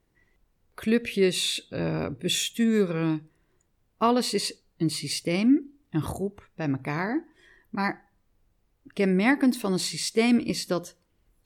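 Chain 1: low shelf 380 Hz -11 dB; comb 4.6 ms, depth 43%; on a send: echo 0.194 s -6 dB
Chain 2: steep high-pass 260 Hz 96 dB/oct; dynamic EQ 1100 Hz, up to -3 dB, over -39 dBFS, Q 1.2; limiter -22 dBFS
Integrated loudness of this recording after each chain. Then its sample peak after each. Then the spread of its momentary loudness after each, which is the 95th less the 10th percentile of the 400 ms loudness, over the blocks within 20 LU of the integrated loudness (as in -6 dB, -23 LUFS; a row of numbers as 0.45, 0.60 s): -28.0, -32.0 LUFS; -10.0, -22.0 dBFS; 13, 7 LU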